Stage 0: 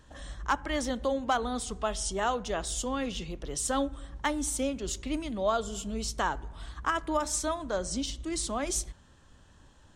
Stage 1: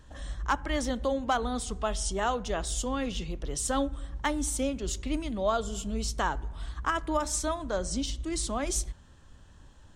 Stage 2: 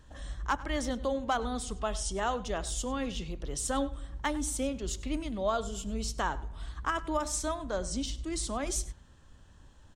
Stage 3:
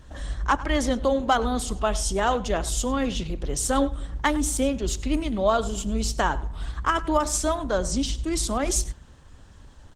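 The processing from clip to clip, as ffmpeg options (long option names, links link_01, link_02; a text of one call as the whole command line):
ffmpeg -i in.wav -af "lowshelf=frequency=110:gain=6.5" out.wav
ffmpeg -i in.wav -filter_complex "[0:a]asplit=2[link_01][link_02];[link_02]adelay=99.13,volume=-18dB,highshelf=frequency=4000:gain=-2.23[link_03];[link_01][link_03]amix=inputs=2:normalize=0,volume=-2.5dB" out.wav
ffmpeg -i in.wav -af "volume=9dB" -ar 48000 -c:a libopus -b:a 16k out.opus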